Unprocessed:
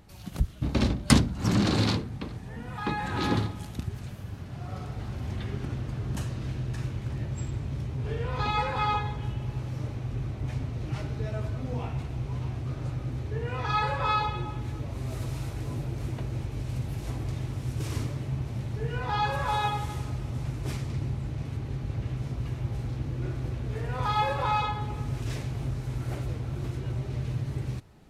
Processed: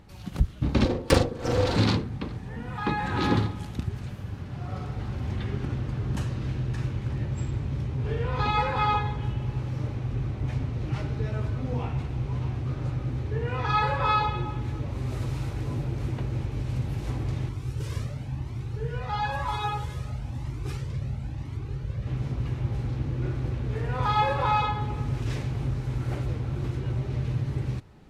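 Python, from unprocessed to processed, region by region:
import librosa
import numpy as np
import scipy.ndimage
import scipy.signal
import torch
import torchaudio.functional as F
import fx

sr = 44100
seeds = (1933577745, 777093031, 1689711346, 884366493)

y = fx.chain(x, sr, fx.lower_of_two(delay_ms=4.8),
    fx.ring_mod(carrier_hz=300.0),
    fx.doubler(ms=42.0, db=-6.0), at=(0.85, 1.76))
y = fx.chain(y, sr, fx.high_shelf(hz=5200.0, db=4.5),
    fx.comb_cascade(direction='rising', hz=1.0), at=(17.49, 22.07))
y = fx.high_shelf(y, sr, hz=6700.0, db=-10.0)
y = fx.notch(y, sr, hz=660.0, q=12.0)
y = F.gain(torch.from_numpy(y), 3.0).numpy()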